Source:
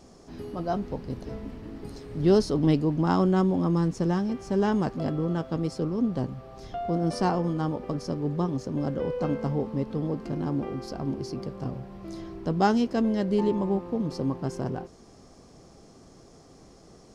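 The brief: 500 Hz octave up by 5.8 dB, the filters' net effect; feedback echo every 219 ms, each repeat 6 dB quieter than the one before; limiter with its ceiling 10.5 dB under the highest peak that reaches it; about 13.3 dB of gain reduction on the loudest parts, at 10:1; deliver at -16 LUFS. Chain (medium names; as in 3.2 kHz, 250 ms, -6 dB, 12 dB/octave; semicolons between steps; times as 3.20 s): peaking EQ 500 Hz +7.5 dB; compression 10:1, threshold -25 dBFS; peak limiter -25 dBFS; feedback delay 219 ms, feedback 50%, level -6 dB; trim +17 dB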